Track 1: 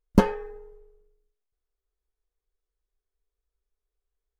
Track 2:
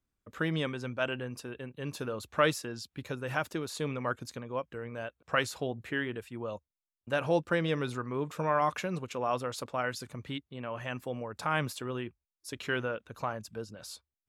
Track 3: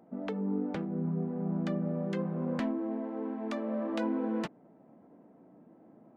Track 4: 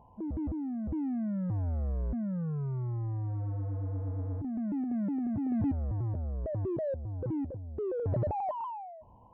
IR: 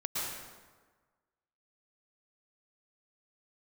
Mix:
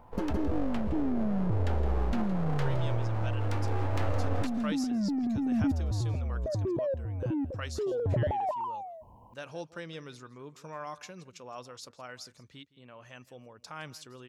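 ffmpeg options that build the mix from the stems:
-filter_complex "[0:a]volume=0.141,asplit=2[s0][s1];[s1]volume=0.631[s2];[1:a]equalizer=f=5500:w=1.2:g=12.5,adelay=2250,volume=0.224,asplit=2[s3][s4];[s4]volume=0.106[s5];[2:a]highpass=f=190:w=0.5412,highpass=f=190:w=1.3066,aeval=exprs='abs(val(0))':c=same,volume=1.06,asplit=3[s6][s7][s8];[s7]volume=0.15[s9];[s8]volume=0.251[s10];[3:a]aemphasis=mode=production:type=cd,volume=1.33[s11];[4:a]atrim=start_sample=2205[s12];[s9][s12]afir=irnorm=-1:irlink=0[s13];[s2][s5][s10]amix=inputs=3:normalize=0,aecho=0:1:165:1[s14];[s0][s3][s6][s11][s13][s14]amix=inputs=6:normalize=0"

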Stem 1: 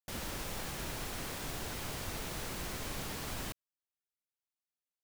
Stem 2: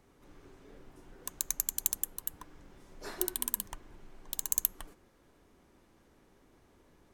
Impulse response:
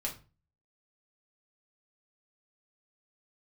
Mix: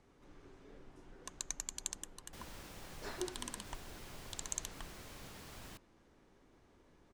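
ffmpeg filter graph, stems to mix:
-filter_complex "[0:a]adelay=2250,volume=0.266[s0];[1:a]lowpass=7600,volume=0.75[s1];[s0][s1]amix=inputs=2:normalize=0,acrossover=split=8800[s2][s3];[s3]acompressor=threshold=0.00112:ratio=4:attack=1:release=60[s4];[s2][s4]amix=inputs=2:normalize=0"

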